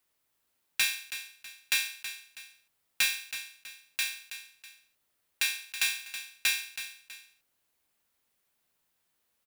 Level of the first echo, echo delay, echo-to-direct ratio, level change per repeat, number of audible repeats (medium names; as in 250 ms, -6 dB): -11.5 dB, 324 ms, -11.0 dB, -8.5 dB, 2